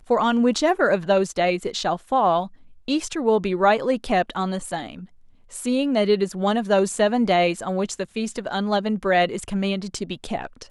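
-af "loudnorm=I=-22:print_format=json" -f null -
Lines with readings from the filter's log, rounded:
"input_i" : "-22.8",
"input_tp" : "-6.2",
"input_lra" : "3.7",
"input_thresh" : "-33.0",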